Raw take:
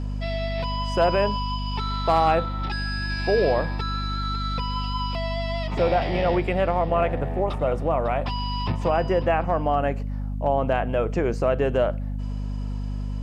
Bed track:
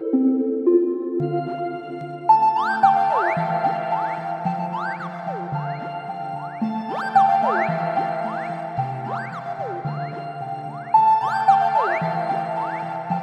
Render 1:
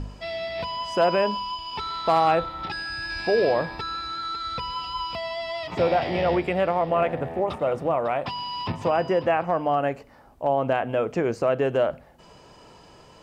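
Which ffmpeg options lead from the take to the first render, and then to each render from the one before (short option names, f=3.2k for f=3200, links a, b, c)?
-af "bandreject=f=50:t=h:w=4,bandreject=f=100:t=h:w=4,bandreject=f=150:t=h:w=4,bandreject=f=200:t=h:w=4,bandreject=f=250:t=h:w=4"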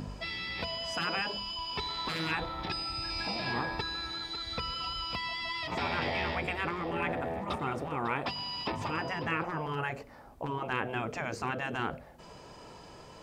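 -af "afftfilt=real='re*lt(hypot(re,im),0.178)':imag='im*lt(hypot(re,im),0.178)':win_size=1024:overlap=0.75,bandreject=f=2.9k:w=21"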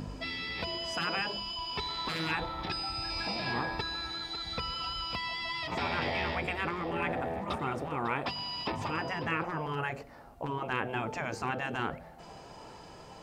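-filter_complex "[1:a]volume=-31dB[a];[0:a][a]amix=inputs=2:normalize=0"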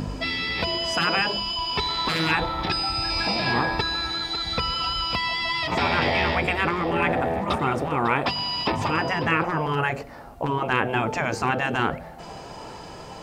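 -af "volume=10dB"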